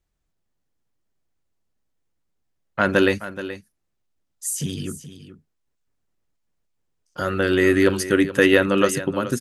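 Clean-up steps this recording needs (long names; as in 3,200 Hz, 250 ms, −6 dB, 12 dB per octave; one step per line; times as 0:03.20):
echo removal 426 ms −13.5 dB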